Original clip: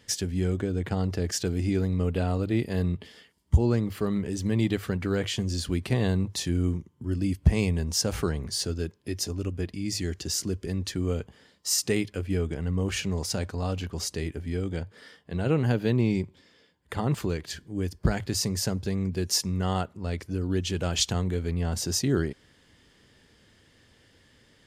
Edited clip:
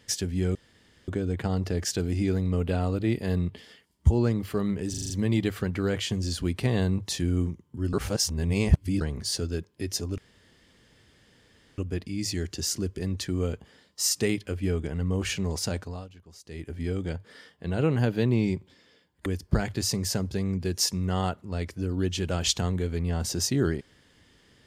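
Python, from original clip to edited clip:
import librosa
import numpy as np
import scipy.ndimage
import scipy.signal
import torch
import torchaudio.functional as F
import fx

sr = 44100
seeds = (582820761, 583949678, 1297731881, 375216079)

y = fx.edit(x, sr, fx.insert_room_tone(at_s=0.55, length_s=0.53),
    fx.stutter(start_s=4.37, slice_s=0.04, count=6),
    fx.reverse_span(start_s=7.2, length_s=1.08),
    fx.insert_room_tone(at_s=9.45, length_s=1.6),
    fx.fade_down_up(start_s=13.4, length_s=1.06, db=-18.0, fade_s=0.35),
    fx.cut(start_s=16.93, length_s=0.85), tone=tone)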